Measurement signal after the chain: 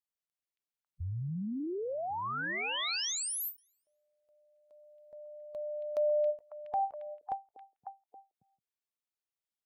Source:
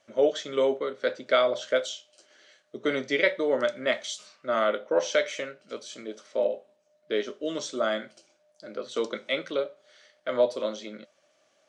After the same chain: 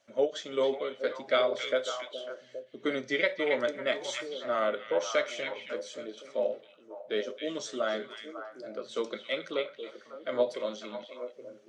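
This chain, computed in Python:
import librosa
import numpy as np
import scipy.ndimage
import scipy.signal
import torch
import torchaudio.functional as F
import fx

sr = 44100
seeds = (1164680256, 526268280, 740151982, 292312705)

y = fx.spec_quant(x, sr, step_db=15)
y = fx.echo_stepped(y, sr, ms=274, hz=2700.0, octaves=-1.4, feedback_pct=70, wet_db=-3)
y = fx.end_taper(y, sr, db_per_s=280.0)
y = y * 10.0 ** (-3.5 / 20.0)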